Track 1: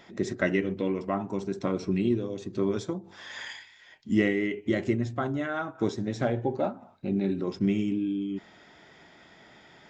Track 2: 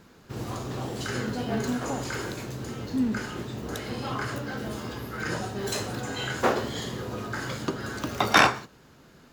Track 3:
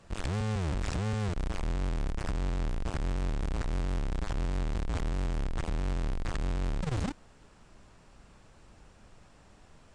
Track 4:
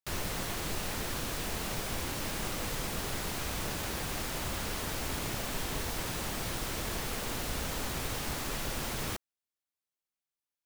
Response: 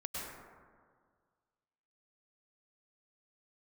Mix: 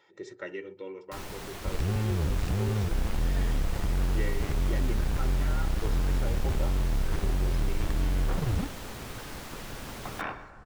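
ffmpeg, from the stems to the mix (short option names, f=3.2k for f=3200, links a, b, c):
-filter_complex "[0:a]highpass=f=410:p=1,aecho=1:1:2.2:0.91,volume=-11dB[a];[1:a]acrossover=split=3000[b][c];[c]acompressor=threshold=-47dB:ratio=4:attack=1:release=60[d];[b][d]amix=inputs=2:normalize=0,adelay=1850,volume=-17.5dB,asplit=2[e][f];[f]volume=-12dB[g];[2:a]lowshelf=f=230:g=8,adelay=1550,volume=-3dB[h];[3:a]adelay=1050,volume=-5dB,asplit=2[i][j];[j]volume=-21.5dB[k];[4:a]atrim=start_sample=2205[l];[g][k]amix=inputs=2:normalize=0[m];[m][l]afir=irnorm=-1:irlink=0[n];[a][e][h][i][n]amix=inputs=5:normalize=0,highshelf=f=4.7k:g=-4.5"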